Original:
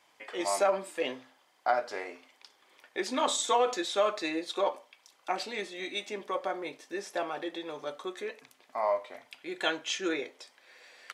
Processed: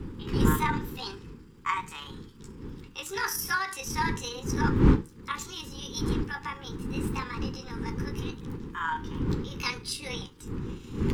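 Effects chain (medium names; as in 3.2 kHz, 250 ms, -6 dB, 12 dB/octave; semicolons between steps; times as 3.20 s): rotating-head pitch shifter +7.5 st; wind noise 290 Hz -31 dBFS; Butterworth band-stop 650 Hz, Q 1.4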